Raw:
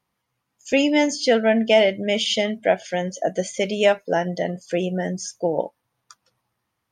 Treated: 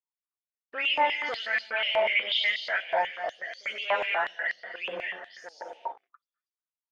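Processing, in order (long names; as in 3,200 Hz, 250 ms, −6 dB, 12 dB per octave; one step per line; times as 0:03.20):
every frequency bin delayed by itself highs late, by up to 209 ms
on a send: echo with shifted repeats 97 ms, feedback 42%, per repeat −90 Hz, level −15.5 dB
on the sum: reverb whose tail is shaped and stops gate 260 ms rising, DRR 4 dB
leveller curve on the samples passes 1
brickwall limiter −10 dBFS, peak gain reduction 5 dB
high-frequency loss of the air 420 metres
noise gate −48 dBFS, range −26 dB
high-pass on a step sequencer 8.2 Hz 930–4,400 Hz
level −4 dB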